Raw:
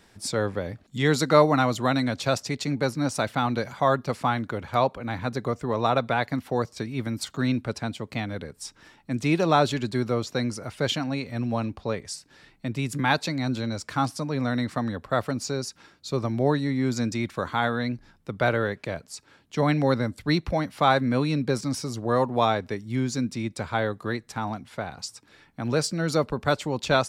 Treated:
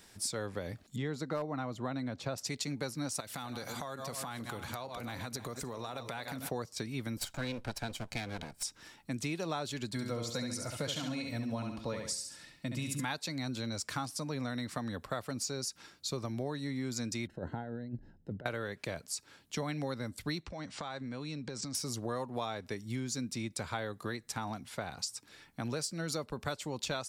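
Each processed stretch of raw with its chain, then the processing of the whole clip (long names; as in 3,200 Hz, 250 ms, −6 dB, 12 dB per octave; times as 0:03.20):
0:00.96–0:02.38: low-pass filter 1,000 Hz 6 dB per octave + gain into a clipping stage and back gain 10.5 dB
0:03.20–0:06.49: feedback delay that plays each chunk backwards 152 ms, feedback 43%, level −12.5 dB + high-shelf EQ 5,500 Hz +10 dB + downward compressor 12 to 1, threshold −32 dBFS
0:07.17–0:08.63: lower of the sound and its delayed copy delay 1.3 ms + high-shelf EQ 11,000 Hz −10 dB
0:09.89–0:13.05: notch comb filter 390 Hz + repeating echo 69 ms, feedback 39%, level −5.5 dB
0:17.27–0:18.46: moving average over 38 samples + compressor whose output falls as the input rises −33 dBFS, ratio −0.5
0:20.43–0:21.75: Butterworth low-pass 8,300 Hz 48 dB per octave + downward compressor 8 to 1, threshold −33 dBFS
whole clip: high-shelf EQ 4,000 Hz +11.5 dB; downward compressor 6 to 1, threshold −29 dBFS; level −4.5 dB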